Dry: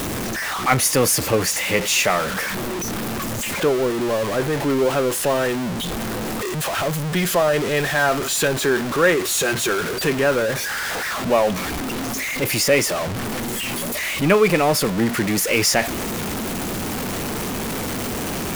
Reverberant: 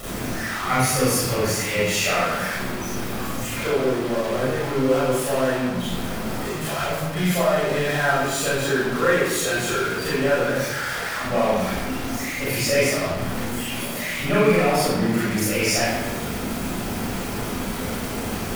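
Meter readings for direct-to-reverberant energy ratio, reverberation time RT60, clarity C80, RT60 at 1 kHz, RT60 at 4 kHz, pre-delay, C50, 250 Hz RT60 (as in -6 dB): -9.5 dB, 1.1 s, 1.0 dB, 1.0 s, 0.80 s, 32 ms, -3.0 dB, 1.4 s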